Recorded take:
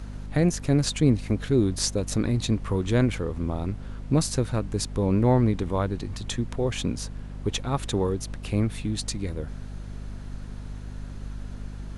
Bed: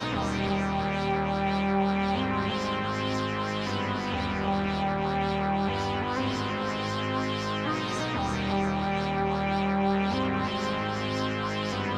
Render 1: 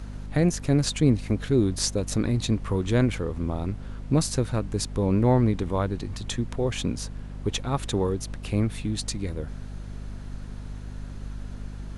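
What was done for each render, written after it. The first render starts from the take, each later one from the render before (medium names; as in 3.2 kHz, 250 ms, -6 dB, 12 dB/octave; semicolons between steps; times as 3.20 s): no audible change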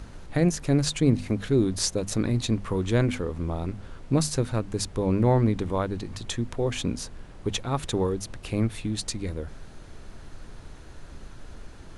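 hum notches 50/100/150/200/250 Hz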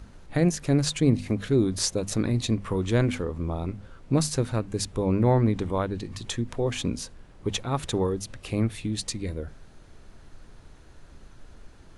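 noise print and reduce 6 dB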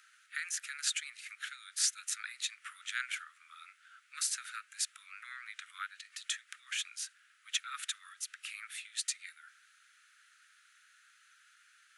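steep high-pass 1.3 kHz 96 dB/octave; peaking EQ 4.7 kHz -5.5 dB 0.84 oct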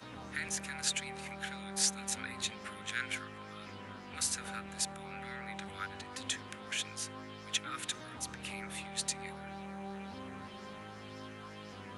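add bed -18.5 dB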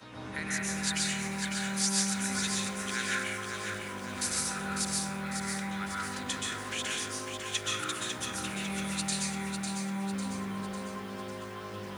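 plate-style reverb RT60 0.93 s, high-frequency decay 0.45×, pre-delay 115 ms, DRR -4.5 dB; bit-crushed delay 550 ms, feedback 55%, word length 9-bit, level -6 dB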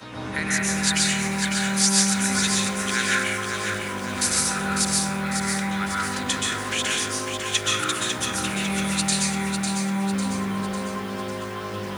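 trim +9.5 dB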